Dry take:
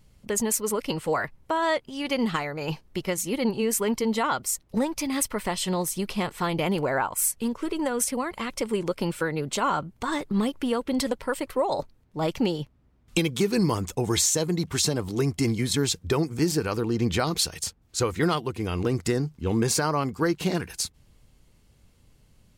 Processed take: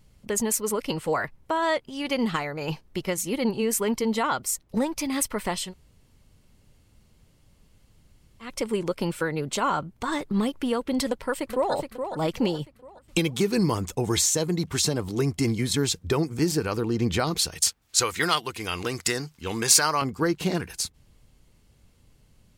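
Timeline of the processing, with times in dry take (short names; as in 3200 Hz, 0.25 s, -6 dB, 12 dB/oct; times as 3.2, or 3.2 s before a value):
5.66–8.47 room tone, crossfade 0.16 s
11.07–11.72 echo throw 0.42 s, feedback 40%, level -7 dB
17.62–20.02 tilt shelf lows -9 dB, about 760 Hz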